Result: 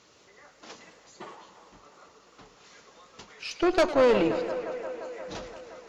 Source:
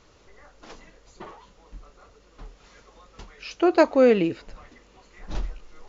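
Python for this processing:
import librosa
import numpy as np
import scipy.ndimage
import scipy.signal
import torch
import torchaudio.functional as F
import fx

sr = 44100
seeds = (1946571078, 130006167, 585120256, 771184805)

p1 = scipy.signal.sosfilt(scipy.signal.butter(2, 140.0, 'highpass', fs=sr, output='sos'), x)
p2 = fx.high_shelf(p1, sr, hz=2500.0, db=6.5)
p3 = p2 + fx.echo_wet_bandpass(p2, sr, ms=175, feedback_pct=80, hz=960.0, wet_db=-11.5, dry=0)
p4 = fx.tube_stage(p3, sr, drive_db=14.0, bias=0.55)
y = fx.echo_warbled(p4, sr, ms=106, feedback_pct=69, rate_hz=2.8, cents=125, wet_db=-14.5)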